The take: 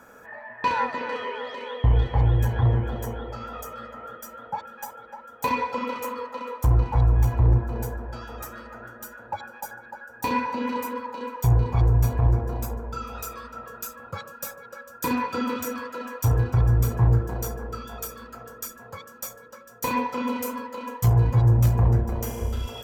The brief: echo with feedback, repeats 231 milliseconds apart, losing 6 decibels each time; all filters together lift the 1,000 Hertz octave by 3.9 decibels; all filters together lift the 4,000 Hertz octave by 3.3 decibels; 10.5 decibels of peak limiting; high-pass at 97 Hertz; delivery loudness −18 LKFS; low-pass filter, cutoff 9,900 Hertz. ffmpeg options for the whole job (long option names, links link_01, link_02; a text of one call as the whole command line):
ffmpeg -i in.wav -af "highpass=97,lowpass=9900,equalizer=frequency=1000:width_type=o:gain=4,equalizer=frequency=4000:width_type=o:gain=4,alimiter=limit=-19.5dB:level=0:latency=1,aecho=1:1:231|462|693|924|1155|1386:0.501|0.251|0.125|0.0626|0.0313|0.0157,volume=10.5dB" out.wav